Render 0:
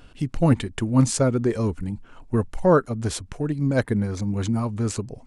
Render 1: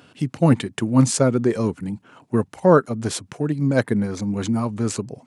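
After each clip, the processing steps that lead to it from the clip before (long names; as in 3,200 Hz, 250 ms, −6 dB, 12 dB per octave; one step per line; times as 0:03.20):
high-pass filter 120 Hz 24 dB per octave
level +3 dB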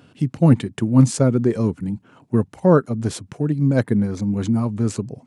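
low-shelf EQ 360 Hz +9.5 dB
level −4.5 dB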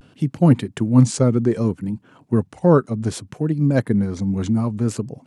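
pitch vibrato 0.64 Hz 69 cents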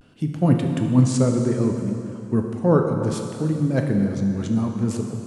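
dense smooth reverb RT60 2.7 s, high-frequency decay 0.9×, DRR 2.5 dB
level −4 dB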